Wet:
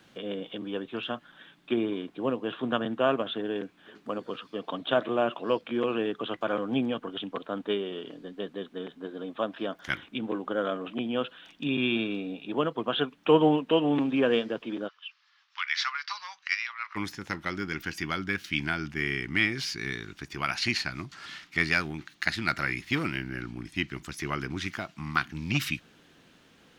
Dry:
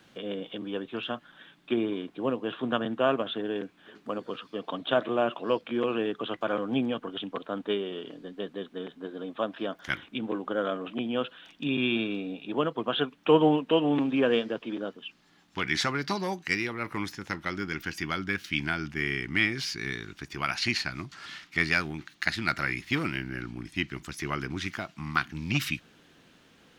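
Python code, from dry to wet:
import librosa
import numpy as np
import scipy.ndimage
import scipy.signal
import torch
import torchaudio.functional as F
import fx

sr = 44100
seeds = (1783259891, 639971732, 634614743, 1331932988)

y = fx.ellip_bandpass(x, sr, low_hz=1100.0, high_hz=5500.0, order=3, stop_db=50, at=(14.87, 16.95), fade=0.02)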